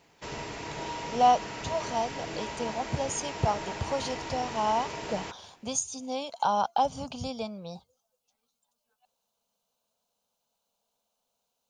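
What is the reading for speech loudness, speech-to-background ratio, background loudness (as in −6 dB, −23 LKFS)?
−30.5 LKFS, 7.0 dB, −37.5 LKFS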